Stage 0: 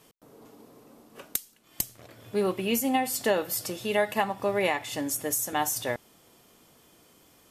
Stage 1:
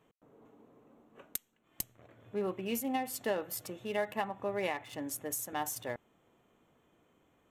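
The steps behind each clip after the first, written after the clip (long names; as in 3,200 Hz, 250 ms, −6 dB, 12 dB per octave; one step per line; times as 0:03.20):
adaptive Wiener filter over 9 samples
level −8 dB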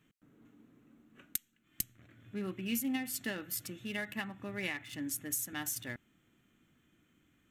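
flat-topped bell 670 Hz −14.5 dB
level +2 dB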